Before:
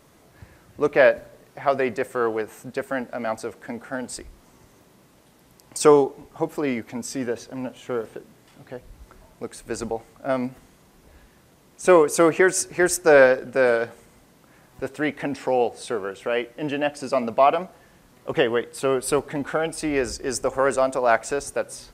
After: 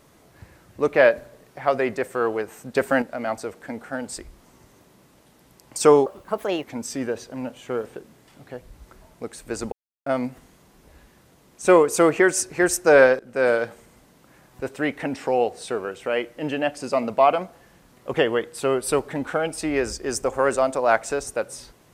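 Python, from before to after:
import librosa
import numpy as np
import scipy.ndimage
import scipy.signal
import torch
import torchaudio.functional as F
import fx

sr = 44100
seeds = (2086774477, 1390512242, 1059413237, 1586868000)

y = fx.edit(x, sr, fx.clip_gain(start_s=2.75, length_s=0.27, db=6.5),
    fx.speed_span(start_s=6.06, length_s=0.78, speed=1.34),
    fx.silence(start_s=9.92, length_s=0.34),
    fx.fade_in_from(start_s=13.39, length_s=0.29, floor_db=-17.5), tone=tone)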